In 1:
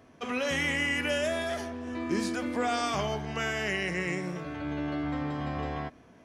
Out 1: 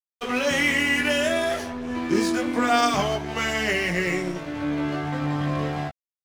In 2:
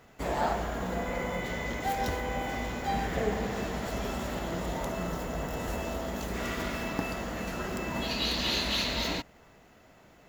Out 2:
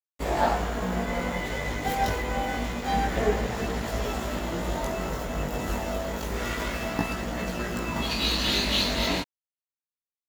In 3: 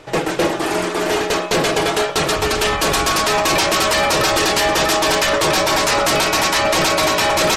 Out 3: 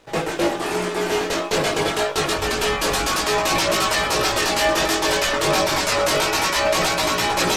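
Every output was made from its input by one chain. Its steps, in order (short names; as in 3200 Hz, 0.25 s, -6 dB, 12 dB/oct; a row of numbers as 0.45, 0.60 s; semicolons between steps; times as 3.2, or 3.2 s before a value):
crossover distortion -43.5 dBFS; chorus voices 2, 0.27 Hz, delay 19 ms, depth 2.4 ms; normalise peaks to -9 dBFS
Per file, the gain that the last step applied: +11.5, +8.5, -0.5 dB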